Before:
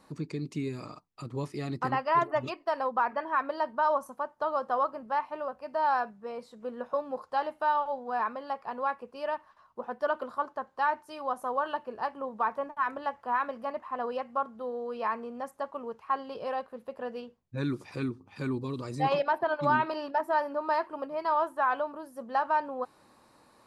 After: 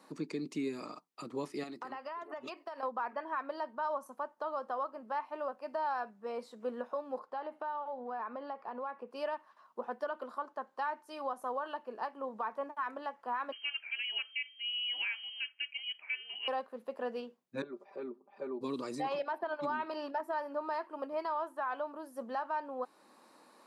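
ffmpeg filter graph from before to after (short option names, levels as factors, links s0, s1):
-filter_complex "[0:a]asettb=1/sr,asplit=3[s0][s1][s2];[s0]atrim=end=1.634[s3];[s1]atrim=start=1.63:end=2.83,asetpts=PTS-STARTPTS,afade=t=in:d=0.004:c=qsin,afade=t=out:st=1.196:d=0.004:c=qsin,highpass=f=290:p=1,acompressor=threshold=0.0126:ratio=20:attack=3.2:release=140:knee=1:detection=peak[s4];[s2]atrim=start=2.826[s5];[s3][s4]acrossfade=d=0.004:c1=hsin:c2=qsin[s6];[s6][s5]acrossfade=d=0.004:c1=qsin:c2=hsin,asettb=1/sr,asplit=3[s7][s8][s9];[s7]atrim=end=7.194[s10];[s8]atrim=start=7.19:end=9.11,asetpts=PTS-STARTPTS,afade=t=in:d=0.004:c=qsin,afade=t=out:st=1.916:d=0.004:c=qsin,lowpass=f=1800:p=1,acompressor=threshold=0.0126:ratio=3:attack=3.2:release=140:knee=1:detection=peak[s11];[s9]atrim=start=9.106[s12];[s10][s11]acrossfade=d=0.004:c1=hsin:c2=qsin[s13];[s13][s12]acrossfade=d=0.004:c1=qsin:c2=hsin,asettb=1/sr,asplit=3[s14][s15][s16];[s14]atrim=end=13.524[s17];[s15]atrim=start=13.52:end=16.48,asetpts=PTS-STARTPTS,afade=t=in:d=0.004:c=qsin,afade=t=out:st=2.956:d=0.004:c=qsin,highpass=260,lowpass=f=2900:t=q:w=0.5098,lowpass=f=2900:t=q:w=0.6013,lowpass=f=2900:t=q:w=0.9,lowpass=f=2900:t=q:w=2.563,afreqshift=-3400[s18];[s16]atrim=start=16.476[s19];[s17][s18]acrossfade=d=0.004:c1=hsin:c2=qsin[s20];[s20][s19]acrossfade=d=0.004:c1=qsin:c2=hsin,asettb=1/sr,asplit=3[s21][s22][s23];[s21]atrim=end=17.624[s24];[s22]atrim=start=17.62:end=18.61,asetpts=PTS-STARTPTS,afade=t=in:d=0.004:c=qsin,afade=t=out:st=0.986:d=0.004:c=qsin,bandpass=f=600:t=q:w=2.4,aecho=1:1:5.1:0.93,atrim=end_sample=43659[s25];[s23]atrim=start=18.606[s26];[s24][s25]acrossfade=d=0.004:c1=hsin:c2=qsin[s27];[s27][s26]acrossfade=d=0.004:c1=qsin:c2=hsin,highpass=f=210:w=0.5412,highpass=f=210:w=1.3066,alimiter=level_in=1.33:limit=0.0631:level=0:latency=1:release=435,volume=0.75"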